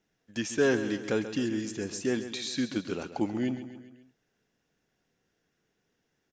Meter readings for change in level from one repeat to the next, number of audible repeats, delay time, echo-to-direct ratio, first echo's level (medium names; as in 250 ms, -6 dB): -5.5 dB, 4, 135 ms, -10.0 dB, -11.5 dB